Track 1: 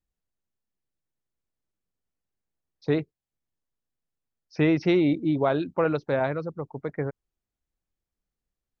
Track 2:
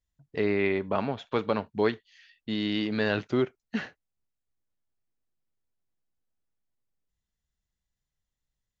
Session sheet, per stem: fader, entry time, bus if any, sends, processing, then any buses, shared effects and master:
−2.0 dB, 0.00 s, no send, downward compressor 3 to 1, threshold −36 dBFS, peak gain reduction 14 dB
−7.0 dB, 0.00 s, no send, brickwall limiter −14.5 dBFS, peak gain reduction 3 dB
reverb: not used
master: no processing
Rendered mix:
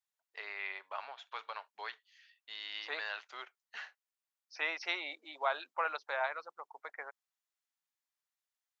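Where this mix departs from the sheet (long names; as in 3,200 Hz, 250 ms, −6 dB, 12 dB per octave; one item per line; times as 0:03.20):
stem 1: missing downward compressor 3 to 1, threshold −36 dBFS, peak gain reduction 14 dB
master: extra high-pass filter 830 Hz 24 dB per octave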